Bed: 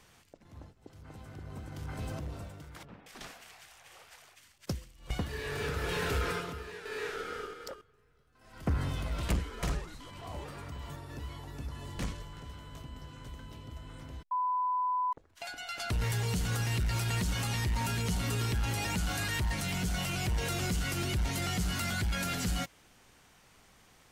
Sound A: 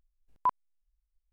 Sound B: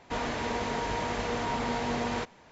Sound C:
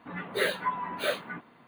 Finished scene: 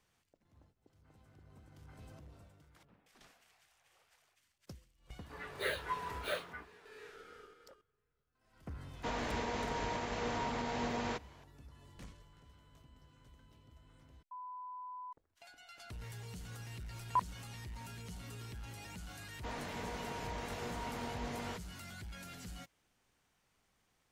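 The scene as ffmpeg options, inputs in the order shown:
-filter_complex "[2:a]asplit=2[a][b];[0:a]volume=-16dB[c];[3:a]highpass=370[d];[a]alimiter=limit=-22dB:level=0:latency=1:release=151[e];[d]atrim=end=1.67,asetpts=PTS-STARTPTS,volume=-8.5dB,afade=t=in:d=0.004:c=hsin,afade=t=out:st=1.666:d=0.004:c=hsin,adelay=5240[f];[e]atrim=end=2.51,asetpts=PTS-STARTPTS,volume=-5.5dB,afade=t=in:d=0.004:c=hsin,afade=t=out:st=2.506:d=0.004:c=hsin,adelay=8930[g];[1:a]atrim=end=1.32,asetpts=PTS-STARTPTS,volume=-4.5dB,afade=t=in:d=0.004:c=hsin,afade=t=out:st=1.316:d=0.004:c=hsin,adelay=16700[h];[b]atrim=end=2.51,asetpts=PTS-STARTPTS,volume=-11.5dB,afade=t=in:d=0.004:c=hsin,afade=t=out:st=2.506:d=0.004:c=hsin,adelay=19330[i];[c][f][g][h][i]amix=inputs=5:normalize=0"

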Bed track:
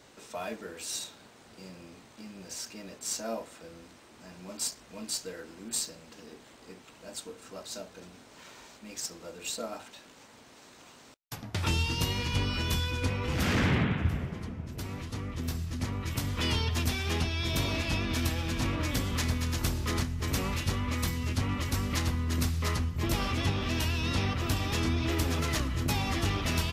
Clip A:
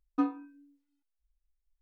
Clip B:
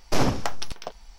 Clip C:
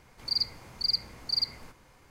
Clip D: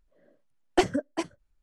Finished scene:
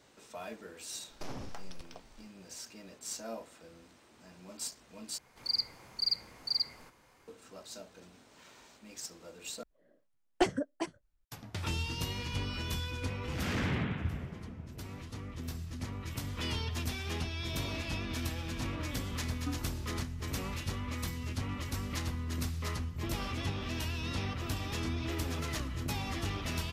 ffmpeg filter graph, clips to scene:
-filter_complex "[0:a]volume=-6.5dB[a];[2:a]alimiter=limit=-21.5dB:level=0:latency=1:release=61[b];[3:a]lowshelf=f=140:g=-9[c];[a]asplit=3[d][e][f];[d]atrim=end=5.184[g];[c]atrim=end=2.1,asetpts=PTS-STARTPTS,volume=-3.5dB[h];[e]atrim=start=7.276:end=9.634[i];[4:a]atrim=end=1.62,asetpts=PTS-STARTPTS,volume=-5.5dB[j];[f]atrim=start=11.246[k];[b]atrim=end=1.18,asetpts=PTS-STARTPTS,volume=-12dB,afade=t=in:d=0.004:c=hsin,afade=t=out:st=1.176:d=0.004:c=hsin,adelay=1090[l];[1:a]atrim=end=1.81,asetpts=PTS-STARTPTS,volume=-11.5dB,afade=t=in:d=0.004:c=hsin,afade=t=out:st=1.806:d=0.004:c=hsin,adelay=19280[m];[g][h]acrossfade=d=0.004:c1=hsin:c2=hsin[n];[n][i]acrossfade=d=0.004:c1=hsin:c2=hsin[o];[o][j]acrossfade=d=0.004:c1=hsin:c2=hsin[p];[p][k]acrossfade=d=0.004:c1=hsin:c2=hsin[q];[q][l][m]amix=inputs=3:normalize=0"

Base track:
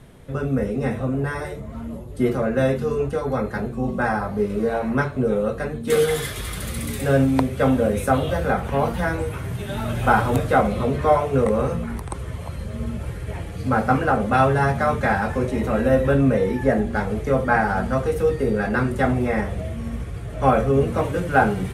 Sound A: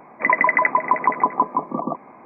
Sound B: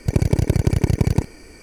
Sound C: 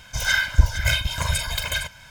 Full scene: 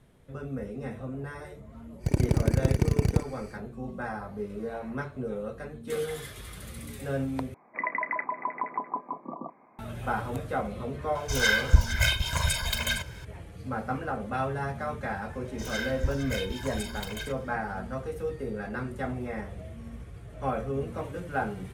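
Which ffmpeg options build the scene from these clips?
-filter_complex "[3:a]asplit=2[a][b];[0:a]volume=-13dB[c];[1:a]asplit=2[d][e];[e]adelay=32,volume=-12.5dB[f];[d][f]amix=inputs=2:normalize=0[g];[c]asplit=2[h][i];[h]atrim=end=7.544[j];[g]atrim=end=2.25,asetpts=PTS-STARTPTS,volume=-14dB[k];[i]atrim=start=9.786[l];[2:a]atrim=end=1.62,asetpts=PTS-STARTPTS,volume=-6.5dB,afade=t=in:d=0.1,afade=t=out:st=1.52:d=0.1,adelay=1980[m];[a]atrim=end=2.1,asetpts=PTS-STARTPTS,volume=-3dB,afade=t=in:d=0.004:c=hsin,afade=t=out:st=2.096:d=0.004:c=hsin,adelay=11150[n];[b]atrim=end=2.1,asetpts=PTS-STARTPTS,volume=-13dB,afade=t=in:d=0.004:c=hsin,afade=t=out:st=2.096:d=0.004:c=hsin,adelay=15450[o];[j][k]acrossfade=d=0.004:c1=hsin:c2=hsin[p];[p][l]acrossfade=d=0.004:c1=hsin:c2=hsin[q];[q][m][n][o]amix=inputs=4:normalize=0"

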